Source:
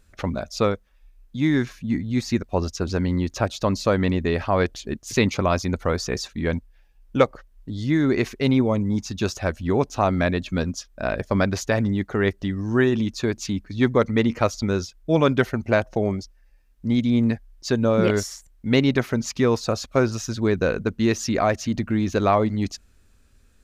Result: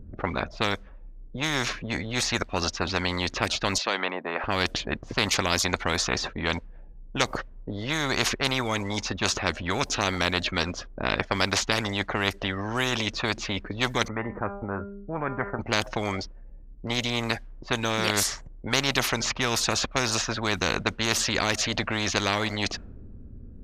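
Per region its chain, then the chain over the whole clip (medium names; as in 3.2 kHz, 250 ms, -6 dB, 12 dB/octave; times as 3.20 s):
3.78–4.44 s: high-pass 510 Hz 24 dB/octave + distance through air 140 m
14.08–15.59 s: inverse Chebyshev low-pass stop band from 4.1 kHz, stop band 50 dB + feedback comb 200 Hz, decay 0.61 s, mix 70%
whole clip: level-controlled noise filter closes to 310 Hz, open at -17 dBFS; bass shelf 390 Hz +5 dB; spectrum-flattening compressor 4:1; trim -4 dB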